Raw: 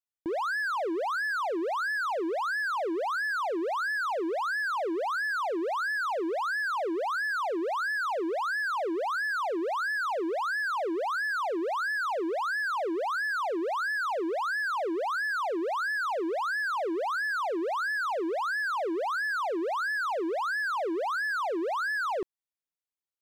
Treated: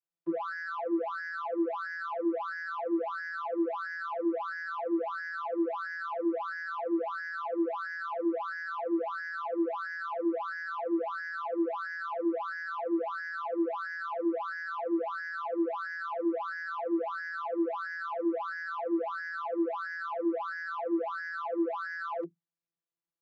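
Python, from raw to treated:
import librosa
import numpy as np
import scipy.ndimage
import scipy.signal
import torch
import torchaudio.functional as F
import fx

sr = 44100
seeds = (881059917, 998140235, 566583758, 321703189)

y = 10.0 ** (-33.0 / 20.0) * np.tanh(x / 10.0 ** (-33.0 / 20.0))
y = fx.vocoder(y, sr, bands=32, carrier='saw', carrier_hz=168.0)
y = F.gain(torch.from_numpy(y), 3.0).numpy()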